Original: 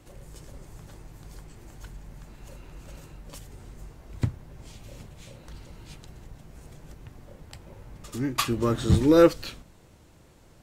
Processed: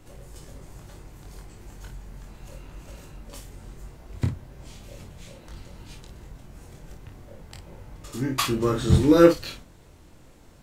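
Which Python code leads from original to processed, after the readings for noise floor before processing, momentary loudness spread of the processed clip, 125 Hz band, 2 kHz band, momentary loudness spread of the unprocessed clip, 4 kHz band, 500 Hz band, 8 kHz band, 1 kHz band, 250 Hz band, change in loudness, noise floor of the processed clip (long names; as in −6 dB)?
−55 dBFS, 21 LU, +2.5 dB, +2.5 dB, 20 LU, +2.0 dB, +1.5 dB, +2.0 dB, +1.5 dB, +2.5 dB, +2.0 dB, −51 dBFS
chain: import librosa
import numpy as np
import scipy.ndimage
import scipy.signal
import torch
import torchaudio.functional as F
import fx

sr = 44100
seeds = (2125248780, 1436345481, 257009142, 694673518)

y = fx.dmg_noise_colour(x, sr, seeds[0], colour='brown', level_db=-57.0)
y = fx.room_early_taps(y, sr, ms=(23, 53), db=(-4.0, -7.5))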